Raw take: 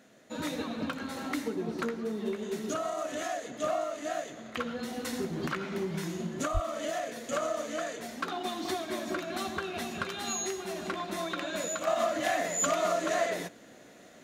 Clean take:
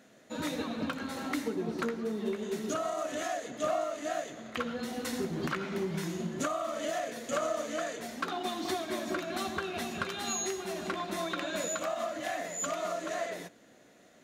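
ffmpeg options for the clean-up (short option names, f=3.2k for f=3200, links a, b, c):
-filter_complex "[0:a]asplit=3[a][b][c];[a]afade=t=out:st=6.53:d=0.02[d];[b]highpass=f=140:w=0.5412,highpass=f=140:w=1.3066,afade=t=in:st=6.53:d=0.02,afade=t=out:st=6.65:d=0.02[e];[c]afade=t=in:st=6.65:d=0.02[f];[d][e][f]amix=inputs=3:normalize=0,asetnsamples=n=441:p=0,asendcmd='11.87 volume volume -6dB',volume=0dB"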